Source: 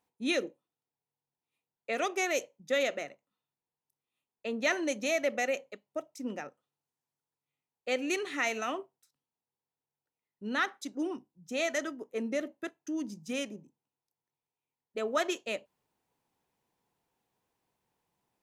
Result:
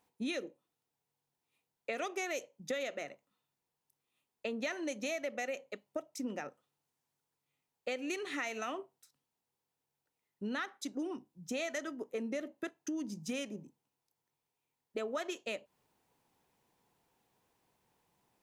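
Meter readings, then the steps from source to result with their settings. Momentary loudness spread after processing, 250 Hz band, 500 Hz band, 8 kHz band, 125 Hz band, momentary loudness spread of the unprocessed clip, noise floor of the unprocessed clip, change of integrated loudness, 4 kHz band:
8 LU, -4.0 dB, -6.0 dB, -5.5 dB, no reading, 12 LU, under -85 dBFS, -6.0 dB, -6.5 dB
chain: compression 5:1, threshold -41 dBFS, peak gain reduction 15.5 dB; trim +5 dB

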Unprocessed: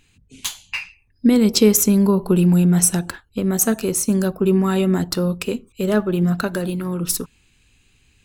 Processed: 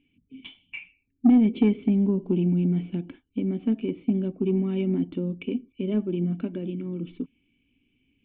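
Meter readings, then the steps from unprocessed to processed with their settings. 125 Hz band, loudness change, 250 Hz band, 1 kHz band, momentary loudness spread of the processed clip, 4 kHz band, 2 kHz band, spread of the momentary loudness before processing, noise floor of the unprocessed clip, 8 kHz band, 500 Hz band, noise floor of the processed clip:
-8.0 dB, -7.0 dB, -5.5 dB, under -10 dB, 17 LU, under -15 dB, -14.0 dB, 15 LU, -60 dBFS, under -40 dB, -10.0 dB, -72 dBFS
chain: cascade formant filter i; overdrive pedal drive 17 dB, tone 1.1 kHz, clips at -8 dBFS

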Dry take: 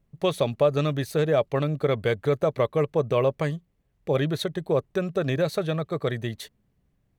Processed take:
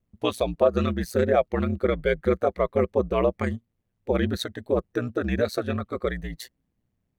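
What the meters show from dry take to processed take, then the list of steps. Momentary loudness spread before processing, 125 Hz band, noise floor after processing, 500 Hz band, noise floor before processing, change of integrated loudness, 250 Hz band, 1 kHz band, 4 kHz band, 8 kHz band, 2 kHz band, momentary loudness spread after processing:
7 LU, -3.5 dB, -77 dBFS, 0.0 dB, -70 dBFS, 0.0 dB, +2.0 dB, +1.5 dB, -1.5 dB, no reading, +1.0 dB, 9 LU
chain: spectral noise reduction 8 dB; ring modulator 60 Hz; trim +4.5 dB

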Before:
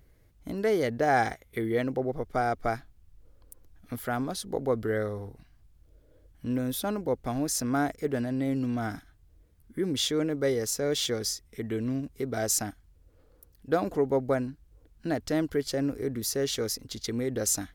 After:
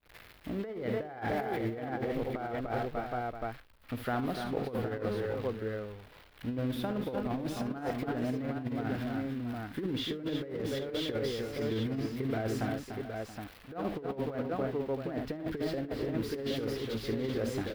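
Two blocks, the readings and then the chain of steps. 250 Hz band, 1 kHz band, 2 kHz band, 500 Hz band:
-3.0 dB, -5.5 dB, -5.0 dB, -5.0 dB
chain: zero-crossing glitches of -21 dBFS; expander -30 dBFS; distance through air 420 m; multi-tap echo 53/72/293/323/676/768 ms -13/-11/-8/-11.5/-15.5/-7 dB; compressor with a negative ratio -30 dBFS, ratio -0.5; trim -2.5 dB

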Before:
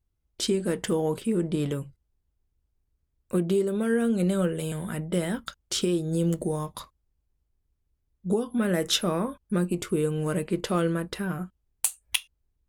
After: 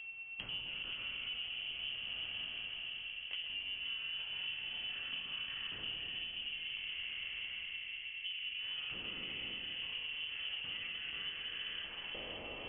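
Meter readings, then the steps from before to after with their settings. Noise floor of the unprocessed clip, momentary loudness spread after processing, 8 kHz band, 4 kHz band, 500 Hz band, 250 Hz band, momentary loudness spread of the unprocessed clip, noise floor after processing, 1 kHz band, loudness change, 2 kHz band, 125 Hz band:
-77 dBFS, 3 LU, under -40 dB, -1.0 dB, -30.5 dB, -34.0 dB, 8 LU, -47 dBFS, -19.5 dB, -12.0 dB, -1.5 dB, -31.0 dB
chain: spectral sustain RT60 2.80 s; high-pass 90 Hz 24 dB/octave; dynamic bell 1.7 kHz, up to -6 dB, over -42 dBFS, Q 0.96; compression 12:1, threshold -35 dBFS, peak gain reduction 19 dB; whistle 490 Hz -49 dBFS; bit crusher 11-bit; valve stage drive 35 dB, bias 0.7; flange 1.4 Hz, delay 2.4 ms, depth 6.3 ms, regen +55%; on a send: two-band feedback delay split 1.5 kHz, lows 522 ms, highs 129 ms, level -5 dB; on the sum: frequency inversion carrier 3.2 kHz; three bands compressed up and down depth 70%; trim +3 dB

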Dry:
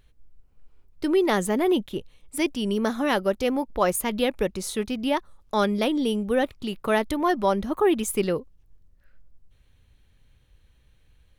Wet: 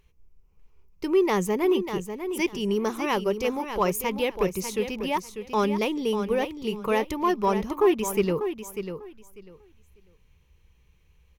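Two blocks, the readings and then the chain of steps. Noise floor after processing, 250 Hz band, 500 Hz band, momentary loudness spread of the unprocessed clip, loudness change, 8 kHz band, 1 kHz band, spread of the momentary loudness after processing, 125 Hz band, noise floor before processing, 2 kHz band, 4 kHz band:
-61 dBFS, -2.0 dB, 0.0 dB, 7 LU, -1.0 dB, -3.0 dB, -0.5 dB, 9 LU, +0.5 dB, -61 dBFS, -2.0 dB, -2.5 dB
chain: rippled EQ curve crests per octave 0.78, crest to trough 9 dB; in parallel at -7 dB: hard clipper -17 dBFS, distortion -13 dB; on the sum: feedback delay 595 ms, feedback 19%, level -9 dB; trim -5.5 dB

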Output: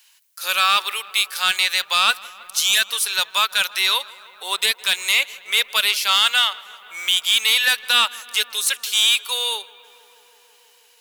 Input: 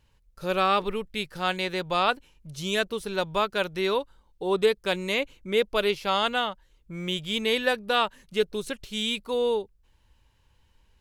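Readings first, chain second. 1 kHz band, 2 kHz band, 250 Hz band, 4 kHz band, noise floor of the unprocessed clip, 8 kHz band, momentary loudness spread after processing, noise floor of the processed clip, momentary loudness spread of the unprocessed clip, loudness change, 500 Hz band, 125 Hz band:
+3.5 dB, +10.0 dB, under -15 dB, +14.0 dB, -65 dBFS, +20.5 dB, 9 LU, -55 dBFS, 10 LU, +9.0 dB, -12.5 dB, under -20 dB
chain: high-pass 1.2 kHz 12 dB/octave; tilt EQ +4.5 dB/octave; in parallel at -2.5 dB: peak limiter -15 dBFS, peak gain reduction 9 dB; on the sum: saturation -12.5 dBFS, distortion -14 dB; filtered feedback delay 161 ms, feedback 84%, low-pass 3.4 kHz, level -21 dB; trim +5 dB

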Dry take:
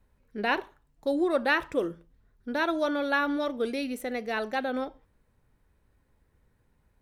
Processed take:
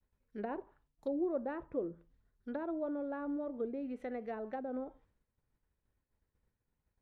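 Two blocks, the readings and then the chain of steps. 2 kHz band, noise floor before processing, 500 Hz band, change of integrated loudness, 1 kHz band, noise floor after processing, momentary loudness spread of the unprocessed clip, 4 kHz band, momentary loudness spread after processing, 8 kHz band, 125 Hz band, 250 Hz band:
-23.5 dB, -69 dBFS, -9.0 dB, -10.5 dB, -14.5 dB, under -85 dBFS, 9 LU, under -30 dB, 9 LU, under -25 dB, -7.5 dB, -7.5 dB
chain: low-pass that closes with the level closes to 610 Hz, closed at -26 dBFS; expander -59 dBFS; trim -7.5 dB

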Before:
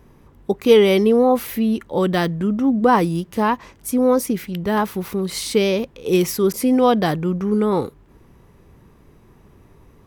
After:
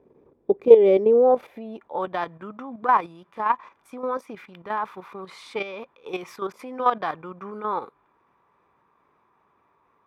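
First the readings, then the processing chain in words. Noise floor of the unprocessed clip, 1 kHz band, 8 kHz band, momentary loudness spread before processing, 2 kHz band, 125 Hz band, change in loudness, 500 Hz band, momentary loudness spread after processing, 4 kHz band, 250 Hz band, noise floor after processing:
-51 dBFS, -2.0 dB, under -20 dB, 9 LU, -7.0 dB, -20.0 dB, -4.0 dB, -3.0 dB, 22 LU, -16.5 dB, -15.5 dB, -66 dBFS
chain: Chebyshev shaper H 2 -14 dB, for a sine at -1.5 dBFS; small resonant body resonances 2.4/3.5 kHz, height 11 dB, ringing for 25 ms; band-pass sweep 440 Hz -> 1.1 kHz, 0.73–2.42 s; level held to a coarse grid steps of 10 dB; trim +4.5 dB

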